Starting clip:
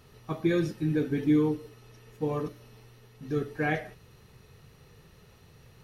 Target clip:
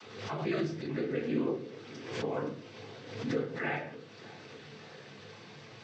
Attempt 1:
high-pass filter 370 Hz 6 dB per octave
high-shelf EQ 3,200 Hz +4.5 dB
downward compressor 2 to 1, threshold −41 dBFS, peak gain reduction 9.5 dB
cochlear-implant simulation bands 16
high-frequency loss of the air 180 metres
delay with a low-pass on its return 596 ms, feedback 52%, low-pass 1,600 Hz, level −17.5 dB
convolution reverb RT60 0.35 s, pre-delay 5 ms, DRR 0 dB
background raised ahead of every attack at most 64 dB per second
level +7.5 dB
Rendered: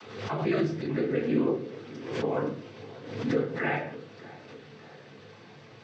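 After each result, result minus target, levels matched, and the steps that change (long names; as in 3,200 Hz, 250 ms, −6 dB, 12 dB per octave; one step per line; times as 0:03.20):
8,000 Hz band −6.5 dB; downward compressor: peak gain reduction −5.5 dB
change: high-shelf EQ 3,200 Hz +11.5 dB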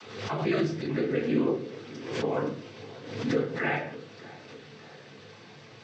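downward compressor: peak gain reduction −5.5 dB
change: downward compressor 2 to 1, threshold −52 dBFS, peak gain reduction 15.5 dB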